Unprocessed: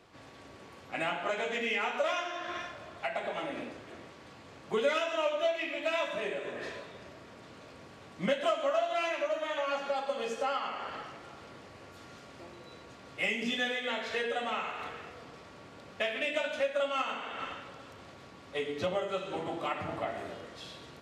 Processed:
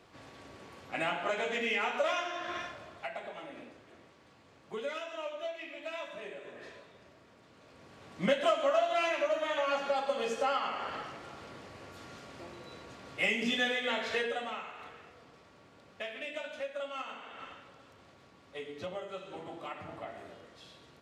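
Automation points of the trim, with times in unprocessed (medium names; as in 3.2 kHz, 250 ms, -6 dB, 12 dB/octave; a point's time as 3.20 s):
2.66 s 0 dB
3.39 s -9 dB
7.52 s -9 dB
8.27 s +1.5 dB
14.15 s +1.5 dB
14.67 s -8 dB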